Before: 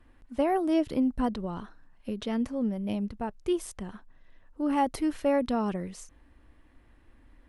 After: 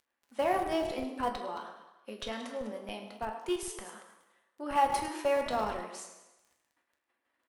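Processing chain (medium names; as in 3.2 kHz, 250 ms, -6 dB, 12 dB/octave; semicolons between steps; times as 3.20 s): chunks repeated in reverse 122 ms, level -11.5 dB; expander -45 dBFS; high-pass 610 Hz 12 dB/octave; crackle 11 per s -51 dBFS; on a send: frequency-shifting echo 105 ms, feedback 55%, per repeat +37 Hz, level -15.5 dB; on the sum: reverberation RT60 0.90 s, pre-delay 7 ms, DRR 3 dB; in parallel at -9.5 dB: Schmitt trigger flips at -29 dBFS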